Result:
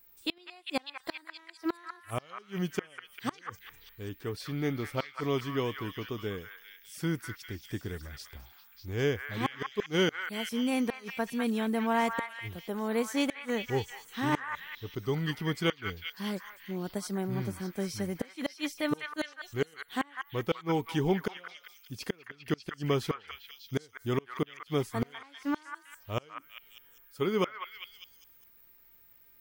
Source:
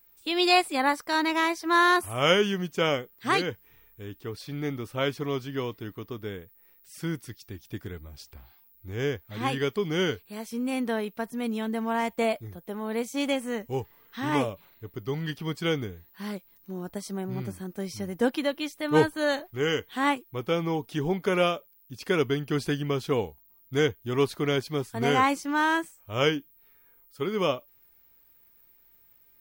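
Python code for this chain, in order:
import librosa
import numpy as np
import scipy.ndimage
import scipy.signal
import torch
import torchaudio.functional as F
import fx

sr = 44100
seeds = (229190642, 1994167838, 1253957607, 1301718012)

y = fx.gate_flip(x, sr, shuts_db=-17.0, range_db=-34)
y = fx.echo_stepped(y, sr, ms=199, hz=1500.0, octaves=0.7, feedback_pct=70, wet_db=-1.5)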